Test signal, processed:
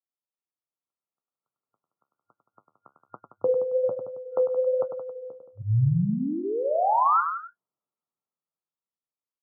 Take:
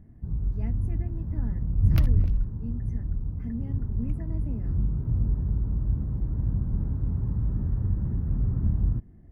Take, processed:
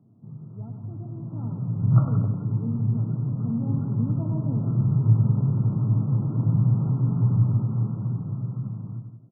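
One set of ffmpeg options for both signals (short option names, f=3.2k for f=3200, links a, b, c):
-filter_complex "[0:a]asplit=2[a][b];[b]adelay=99.13,volume=-8dB,highshelf=f=4k:g=-2.23[c];[a][c]amix=inputs=2:normalize=0,acrossover=split=170|640[d][e][f];[e]acompressor=threshold=-45dB:ratio=6[g];[d][g][f]amix=inputs=3:normalize=0,afftfilt=real='re*between(b*sr/4096,100,1400)':imag='im*between(b*sr/4096,100,1400)':win_size=4096:overlap=0.75,flanger=delay=6.5:depth=8.4:regen=-54:speed=1.2:shape=sinusoidal,dynaudnorm=f=110:g=31:m=14dB,asplit=2[h][i];[i]aecho=0:1:173:0.299[j];[h][j]amix=inputs=2:normalize=0,volume=2dB"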